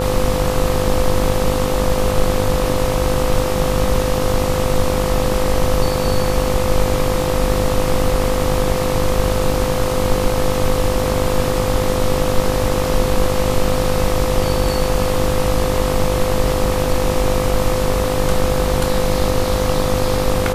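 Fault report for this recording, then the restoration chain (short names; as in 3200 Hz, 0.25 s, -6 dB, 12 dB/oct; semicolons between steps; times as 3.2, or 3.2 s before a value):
buzz 50 Hz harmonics 26 -22 dBFS
tone 510 Hz -20 dBFS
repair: de-hum 50 Hz, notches 26; notch 510 Hz, Q 30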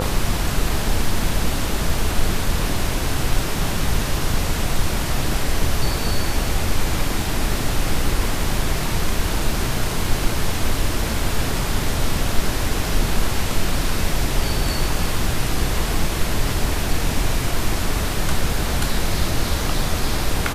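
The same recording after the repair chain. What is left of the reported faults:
none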